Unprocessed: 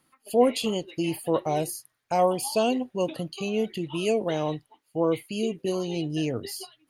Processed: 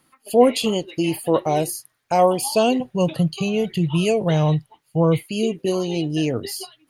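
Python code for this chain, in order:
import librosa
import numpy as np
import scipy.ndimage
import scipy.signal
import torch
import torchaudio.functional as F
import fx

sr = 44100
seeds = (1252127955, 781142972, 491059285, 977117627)

y = fx.low_shelf_res(x, sr, hz=200.0, db=6.0, q=3.0, at=(2.8, 5.19))
y = F.gain(torch.from_numpy(y), 6.0).numpy()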